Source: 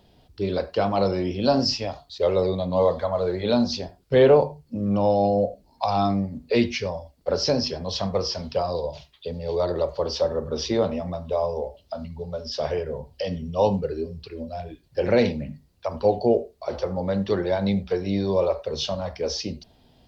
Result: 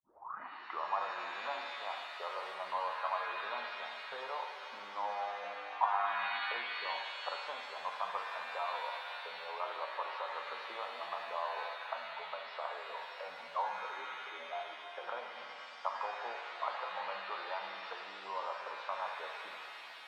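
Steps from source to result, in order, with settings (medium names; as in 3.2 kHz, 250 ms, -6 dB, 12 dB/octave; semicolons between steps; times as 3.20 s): tape start-up on the opening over 0.99 s; compression, threshold -32 dBFS, peak gain reduction 19 dB; Butterworth band-pass 1.1 kHz, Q 2.3; pitch-shifted reverb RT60 3 s, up +7 st, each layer -2 dB, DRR 4 dB; trim +9 dB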